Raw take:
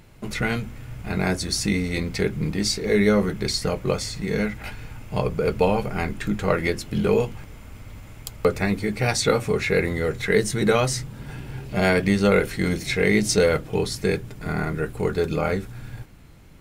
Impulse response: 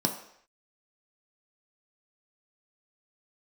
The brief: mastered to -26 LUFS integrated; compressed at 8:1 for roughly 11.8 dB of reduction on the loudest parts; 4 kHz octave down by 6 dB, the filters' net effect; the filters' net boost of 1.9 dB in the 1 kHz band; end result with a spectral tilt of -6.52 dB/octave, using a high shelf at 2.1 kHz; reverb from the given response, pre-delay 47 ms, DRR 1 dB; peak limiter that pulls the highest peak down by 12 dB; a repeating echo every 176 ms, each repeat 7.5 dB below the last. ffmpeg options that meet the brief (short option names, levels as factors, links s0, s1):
-filter_complex "[0:a]equalizer=f=1000:t=o:g=4,highshelf=f=2100:g=-4.5,equalizer=f=4000:t=o:g=-3,acompressor=threshold=0.0501:ratio=8,alimiter=level_in=1.06:limit=0.0631:level=0:latency=1,volume=0.944,aecho=1:1:176|352|528|704|880:0.422|0.177|0.0744|0.0312|0.0131,asplit=2[s0][s1];[1:a]atrim=start_sample=2205,adelay=47[s2];[s1][s2]afir=irnorm=-1:irlink=0,volume=0.355[s3];[s0][s3]amix=inputs=2:normalize=0,volume=1.19"